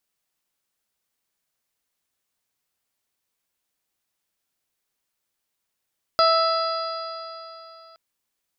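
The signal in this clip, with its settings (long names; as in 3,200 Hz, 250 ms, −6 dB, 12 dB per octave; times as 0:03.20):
stiff-string partials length 1.77 s, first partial 653 Hz, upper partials 1.5/−17.5/−19/−16.5/−11/−3 dB, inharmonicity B 0.0025, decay 3.19 s, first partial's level −18 dB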